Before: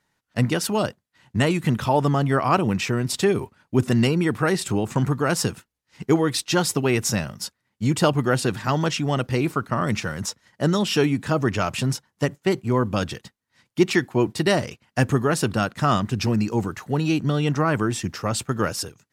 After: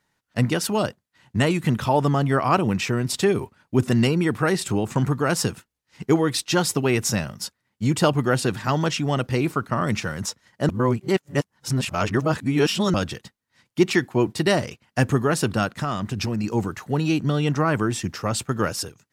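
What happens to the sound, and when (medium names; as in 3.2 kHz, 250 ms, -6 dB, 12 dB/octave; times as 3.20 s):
10.69–12.94 s: reverse
15.70–16.44 s: compression, threshold -21 dBFS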